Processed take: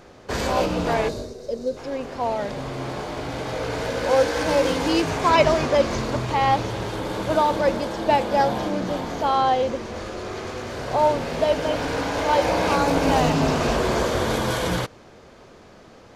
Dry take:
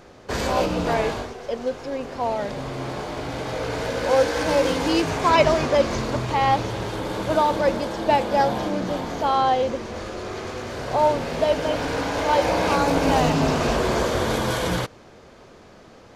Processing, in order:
gain on a spectral selection 0:01.09–0:01.77, 660–3,600 Hz −13 dB

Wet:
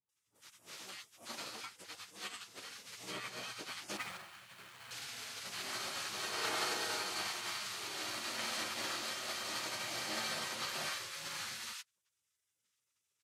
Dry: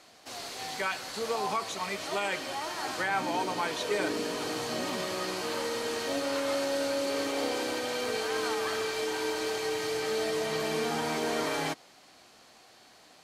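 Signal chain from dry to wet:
0:03.88–0:04.82: running median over 9 samples
high-pass filter 120 Hz 12 dB per octave
gate on every frequency bin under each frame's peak −15 dB weak
thirty-one-band graphic EQ 160 Hz −5 dB, 250 Hz −3 dB, 1,250 Hz +3 dB
multiband delay without the direct sound lows, highs 90 ms, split 940 Hz
expander for the loud parts 2.5 to 1, over −49 dBFS
level +2 dB

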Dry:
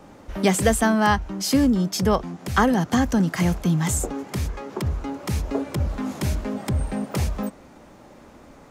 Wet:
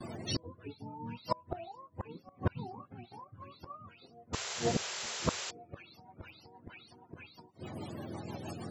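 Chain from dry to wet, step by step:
frequency axis turned over on the octave scale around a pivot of 440 Hz
noise gate with hold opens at −42 dBFS
low-shelf EQ 310 Hz −2.5 dB
gate with flip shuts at −25 dBFS, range −32 dB
rotating-speaker cabinet horn 0.6 Hz, later 6.3 Hz, at 0:02.61
sound drawn into the spectrogram noise, 0:04.33–0:05.51, 350–7,700 Hz −50 dBFS
level +10 dB

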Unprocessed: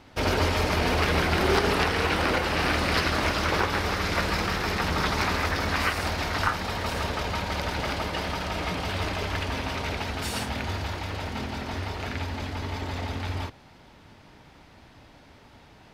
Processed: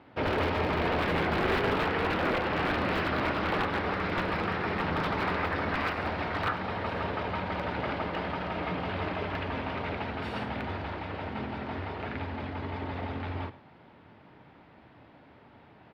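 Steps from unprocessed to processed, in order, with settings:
high-pass filter 110 Hz 12 dB per octave
mains-hum notches 50/100/150/200/250 Hz
wrap-around overflow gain 17 dB
high-frequency loss of the air 420 metres
single-tap delay 100 ms −17.5 dB

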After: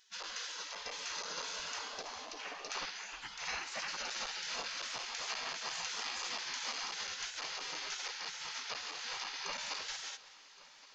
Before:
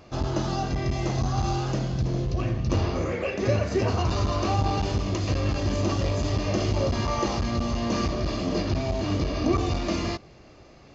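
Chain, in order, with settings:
gate on every frequency bin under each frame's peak −25 dB weak
mains-hum notches 50/100/150/200 Hz
echo machine with several playback heads 373 ms, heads first and third, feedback 68%, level −21.5 dB

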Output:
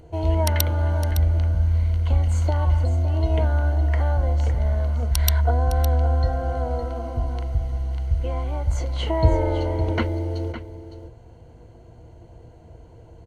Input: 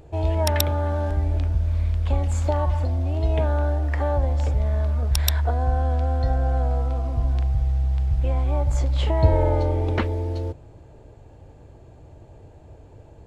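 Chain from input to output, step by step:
EQ curve with evenly spaced ripples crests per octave 1.9, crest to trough 10 dB
single-tap delay 560 ms −11.5 dB
level −1 dB

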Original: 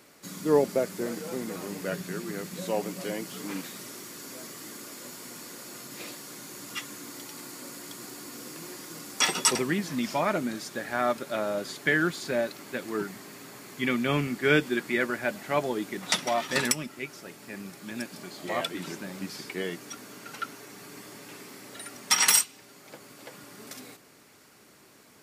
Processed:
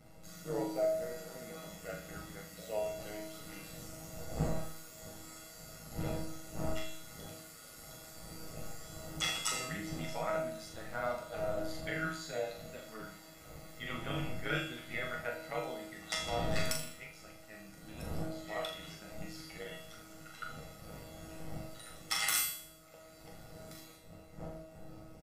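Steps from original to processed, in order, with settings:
wind on the microphone 360 Hz −36 dBFS
comb filter 1.5 ms, depth 86%
amplitude modulation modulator 110 Hz, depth 85%
tuned comb filter 160 Hz, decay 0.67 s, harmonics all, mix 90%
flutter between parallel walls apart 7 metres, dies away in 0.48 s
level +4 dB

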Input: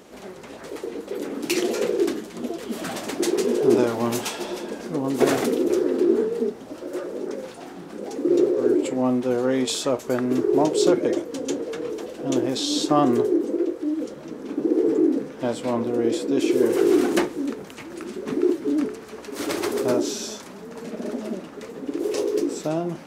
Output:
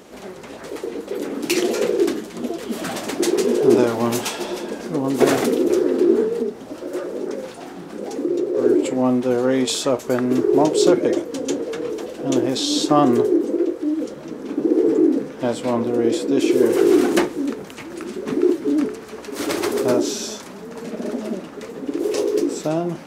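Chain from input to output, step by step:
0:06.40–0:08.55: downward compressor 6 to 1, threshold −22 dBFS, peak gain reduction 8.5 dB
level +3.5 dB

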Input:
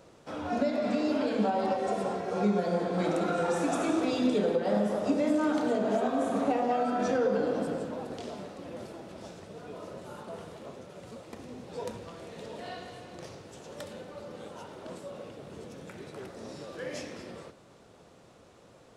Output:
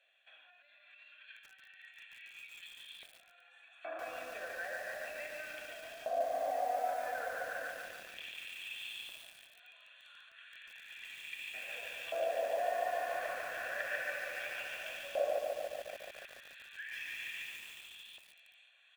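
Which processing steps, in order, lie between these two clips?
high-pass filter 250 Hz 12 dB per octave
high shelf with overshoot 3,600 Hz −8 dB, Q 1.5
comb filter 1.2 ms, depth 70%
downward compressor 2 to 1, threshold −40 dBFS, peak gain reduction 10 dB
brickwall limiter −34.5 dBFS, peak gain reduction 9 dB
speech leveller within 4 dB 0.5 s
auto-filter high-pass square 0.13 Hz 610–3,600 Hz
phaser with its sweep stopped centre 2,200 Hz, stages 4
auto-filter band-pass saw up 0.33 Hz 630–3,500 Hz
delay with a high-pass on its return 1,195 ms, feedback 30%, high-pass 5,200 Hz, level −6 dB
feedback echo at a low word length 144 ms, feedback 80%, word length 11 bits, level −3 dB
level +13.5 dB

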